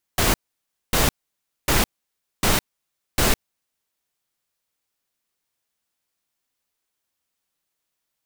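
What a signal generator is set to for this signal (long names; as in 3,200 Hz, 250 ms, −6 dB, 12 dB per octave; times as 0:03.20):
noise bursts pink, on 0.16 s, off 0.59 s, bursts 5, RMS −18 dBFS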